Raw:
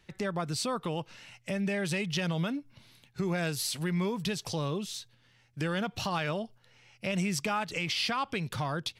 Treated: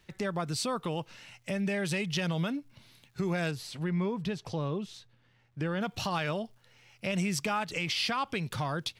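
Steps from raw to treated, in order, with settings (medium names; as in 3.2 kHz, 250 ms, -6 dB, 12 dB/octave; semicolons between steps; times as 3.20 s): crackle 580 per s -62 dBFS; 3.51–5.81 s: low-pass 1.6 kHz 6 dB/octave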